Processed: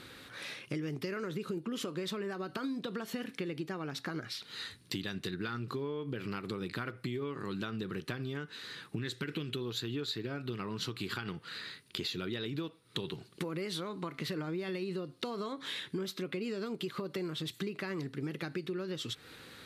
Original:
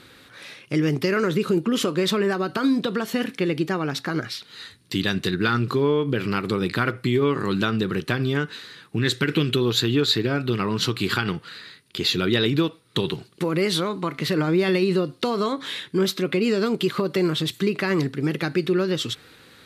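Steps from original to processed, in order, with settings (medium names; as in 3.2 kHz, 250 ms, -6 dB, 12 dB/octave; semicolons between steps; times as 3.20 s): compression 5:1, threshold -34 dBFS, peak gain reduction 16 dB; trim -2 dB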